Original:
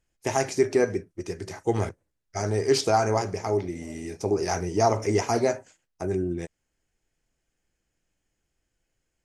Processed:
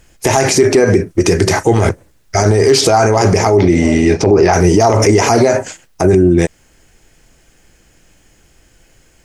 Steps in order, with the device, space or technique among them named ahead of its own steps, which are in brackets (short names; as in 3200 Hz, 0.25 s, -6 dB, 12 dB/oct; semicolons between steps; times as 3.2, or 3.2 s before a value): 3.55–4.52 LPF 6900 Hz -> 2900 Hz 12 dB/oct; loud club master (compressor 2:1, threshold -27 dBFS, peak gain reduction 6.5 dB; hard clip -17.5 dBFS, distortion -30 dB; maximiser +29 dB); gain -1 dB